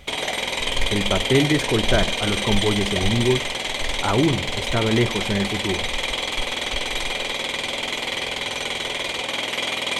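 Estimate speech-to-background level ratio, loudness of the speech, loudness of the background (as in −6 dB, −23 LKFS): 0.5 dB, −23.5 LKFS, −24.0 LKFS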